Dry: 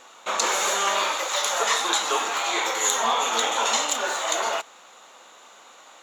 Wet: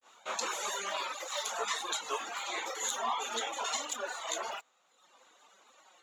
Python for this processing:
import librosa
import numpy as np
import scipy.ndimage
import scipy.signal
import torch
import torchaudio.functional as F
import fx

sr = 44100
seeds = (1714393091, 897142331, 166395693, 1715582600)

y = fx.granulator(x, sr, seeds[0], grain_ms=164.0, per_s=18.0, spray_ms=15.0, spread_st=0)
y = fx.dereverb_blind(y, sr, rt60_s=1.1)
y = y * librosa.db_to_amplitude(-7.0)